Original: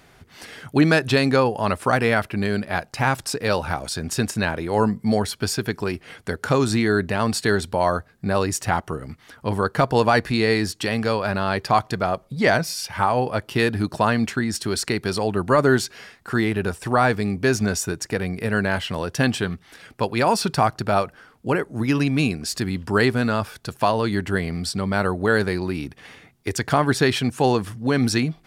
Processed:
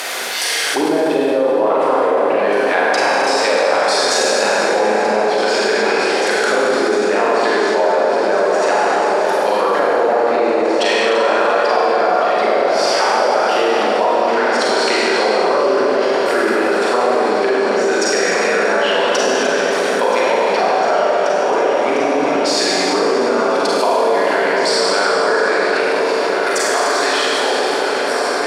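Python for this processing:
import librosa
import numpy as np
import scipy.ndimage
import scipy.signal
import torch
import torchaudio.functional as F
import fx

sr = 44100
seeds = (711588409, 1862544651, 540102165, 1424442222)

y = fx.fade_out_tail(x, sr, length_s=5.13)
y = fx.env_lowpass_down(y, sr, base_hz=490.0, full_db=-15.0)
y = fx.ladder_highpass(y, sr, hz=370.0, resonance_pct=25)
y = fx.high_shelf(y, sr, hz=2300.0, db=10.0)
y = fx.echo_opening(y, sr, ms=703, hz=750, octaves=2, feedback_pct=70, wet_db=-6)
y = fx.rev_schroeder(y, sr, rt60_s=2.8, comb_ms=33, drr_db=-7.5)
y = fx.env_flatten(y, sr, amount_pct=70)
y = F.gain(torch.from_numpy(y), 4.0).numpy()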